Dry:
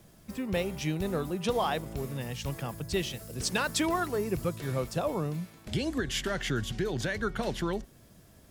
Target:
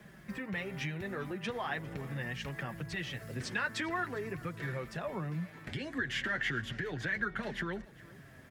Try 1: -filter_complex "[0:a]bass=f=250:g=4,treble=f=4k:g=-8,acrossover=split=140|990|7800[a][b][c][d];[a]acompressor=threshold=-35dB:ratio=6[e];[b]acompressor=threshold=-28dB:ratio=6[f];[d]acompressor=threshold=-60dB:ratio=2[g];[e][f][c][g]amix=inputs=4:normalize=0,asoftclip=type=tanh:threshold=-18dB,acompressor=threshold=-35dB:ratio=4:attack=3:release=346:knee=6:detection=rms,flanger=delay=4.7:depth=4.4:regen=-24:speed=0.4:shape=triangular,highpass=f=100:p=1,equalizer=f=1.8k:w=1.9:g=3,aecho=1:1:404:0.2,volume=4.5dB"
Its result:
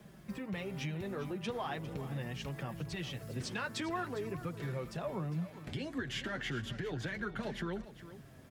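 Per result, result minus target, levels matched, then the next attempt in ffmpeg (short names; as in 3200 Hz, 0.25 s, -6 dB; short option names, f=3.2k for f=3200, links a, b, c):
soft clip: distortion +20 dB; 2000 Hz band -5.0 dB; echo-to-direct +7 dB
-filter_complex "[0:a]bass=f=250:g=4,treble=f=4k:g=-8,acrossover=split=140|990|7800[a][b][c][d];[a]acompressor=threshold=-35dB:ratio=6[e];[b]acompressor=threshold=-28dB:ratio=6[f];[d]acompressor=threshold=-60dB:ratio=2[g];[e][f][c][g]amix=inputs=4:normalize=0,asoftclip=type=tanh:threshold=-7.5dB,acompressor=threshold=-35dB:ratio=4:attack=3:release=346:knee=6:detection=rms,flanger=delay=4.7:depth=4.4:regen=-24:speed=0.4:shape=triangular,highpass=f=100:p=1,equalizer=f=1.8k:w=1.9:g=3,aecho=1:1:404:0.2,volume=4.5dB"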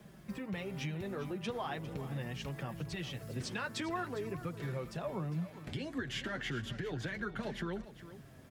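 2000 Hz band -5.0 dB; echo-to-direct +7 dB
-filter_complex "[0:a]bass=f=250:g=4,treble=f=4k:g=-8,acrossover=split=140|990|7800[a][b][c][d];[a]acompressor=threshold=-35dB:ratio=6[e];[b]acompressor=threshold=-28dB:ratio=6[f];[d]acompressor=threshold=-60dB:ratio=2[g];[e][f][c][g]amix=inputs=4:normalize=0,asoftclip=type=tanh:threshold=-7.5dB,acompressor=threshold=-35dB:ratio=4:attack=3:release=346:knee=6:detection=rms,flanger=delay=4.7:depth=4.4:regen=-24:speed=0.4:shape=triangular,highpass=f=100:p=1,equalizer=f=1.8k:w=1.9:g=13,aecho=1:1:404:0.2,volume=4.5dB"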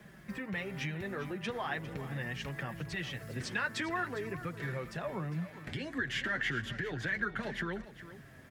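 echo-to-direct +7 dB
-filter_complex "[0:a]bass=f=250:g=4,treble=f=4k:g=-8,acrossover=split=140|990|7800[a][b][c][d];[a]acompressor=threshold=-35dB:ratio=6[e];[b]acompressor=threshold=-28dB:ratio=6[f];[d]acompressor=threshold=-60dB:ratio=2[g];[e][f][c][g]amix=inputs=4:normalize=0,asoftclip=type=tanh:threshold=-7.5dB,acompressor=threshold=-35dB:ratio=4:attack=3:release=346:knee=6:detection=rms,flanger=delay=4.7:depth=4.4:regen=-24:speed=0.4:shape=triangular,highpass=f=100:p=1,equalizer=f=1.8k:w=1.9:g=13,aecho=1:1:404:0.0891,volume=4.5dB"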